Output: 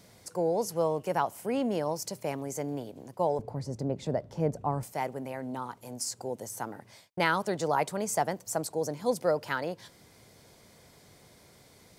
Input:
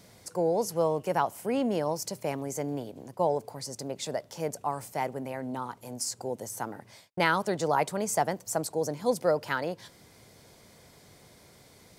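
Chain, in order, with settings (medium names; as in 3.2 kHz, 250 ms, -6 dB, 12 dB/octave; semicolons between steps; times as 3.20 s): 3.39–4.83 s: tilt EQ -4 dB/octave; trim -1.5 dB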